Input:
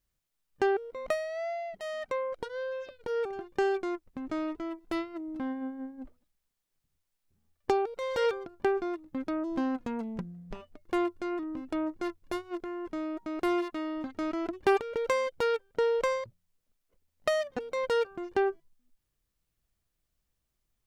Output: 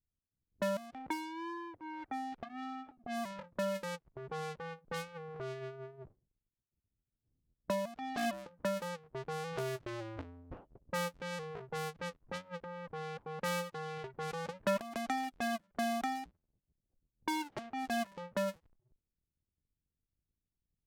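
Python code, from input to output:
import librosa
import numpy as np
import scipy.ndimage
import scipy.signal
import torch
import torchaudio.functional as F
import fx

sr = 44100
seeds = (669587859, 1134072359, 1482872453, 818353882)

y = fx.cycle_switch(x, sr, every=2, mode='inverted')
y = fx.env_lowpass(y, sr, base_hz=330.0, full_db=-27.0)
y = y * librosa.db_to_amplitude(-7.5)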